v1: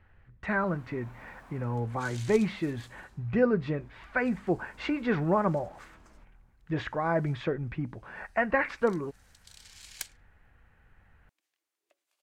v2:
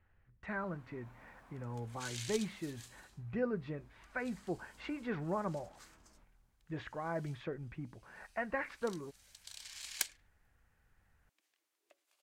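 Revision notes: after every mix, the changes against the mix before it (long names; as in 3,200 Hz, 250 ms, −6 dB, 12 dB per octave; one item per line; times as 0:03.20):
speech −11.0 dB
first sound −8.0 dB
second sound +3.0 dB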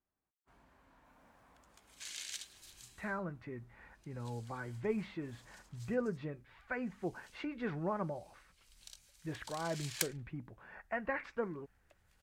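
speech: entry +2.55 s
first sound −3.5 dB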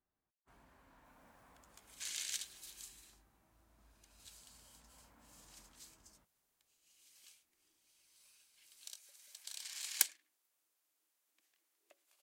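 speech: muted
master: add high-shelf EQ 8,100 Hz +9.5 dB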